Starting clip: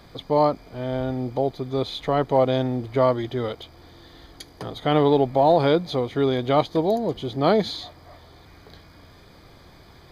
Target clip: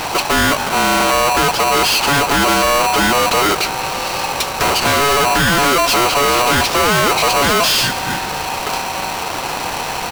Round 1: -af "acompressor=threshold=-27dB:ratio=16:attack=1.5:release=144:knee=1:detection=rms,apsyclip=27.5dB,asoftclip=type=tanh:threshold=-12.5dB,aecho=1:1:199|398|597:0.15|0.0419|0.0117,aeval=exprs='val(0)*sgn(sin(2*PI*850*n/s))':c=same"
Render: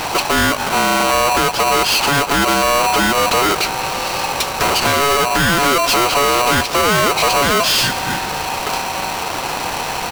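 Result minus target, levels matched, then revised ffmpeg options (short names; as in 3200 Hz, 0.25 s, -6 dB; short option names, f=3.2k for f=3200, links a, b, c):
compressor: peak gain reduction +9.5 dB
-af "acompressor=threshold=-17dB:ratio=16:attack=1.5:release=144:knee=1:detection=rms,apsyclip=27.5dB,asoftclip=type=tanh:threshold=-12.5dB,aecho=1:1:199|398|597:0.15|0.0419|0.0117,aeval=exprs='val(0)*sgn(sin(2*PI*850*n/s))':c=same"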